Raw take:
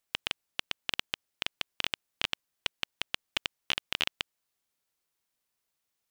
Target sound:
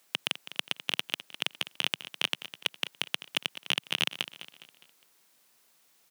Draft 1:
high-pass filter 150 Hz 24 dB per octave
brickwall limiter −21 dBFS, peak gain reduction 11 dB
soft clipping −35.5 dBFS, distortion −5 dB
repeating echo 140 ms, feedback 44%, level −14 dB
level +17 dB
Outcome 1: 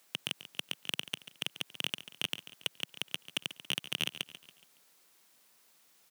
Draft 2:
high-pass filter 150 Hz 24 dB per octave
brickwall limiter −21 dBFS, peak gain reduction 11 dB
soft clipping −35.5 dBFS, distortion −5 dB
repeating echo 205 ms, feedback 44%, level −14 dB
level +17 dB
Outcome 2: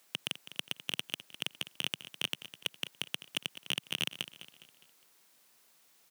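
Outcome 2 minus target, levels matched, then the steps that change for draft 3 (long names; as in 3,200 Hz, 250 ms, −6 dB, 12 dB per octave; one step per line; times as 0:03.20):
soft clipping: distortion +7 dB
change: soft clipping −27 dBFS, distortion −12 dB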